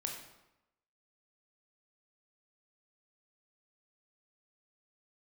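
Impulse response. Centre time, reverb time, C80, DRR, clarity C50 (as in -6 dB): 34 ms, 0.95 s, 7.5 dB, 1.0 dB, 5.0 dB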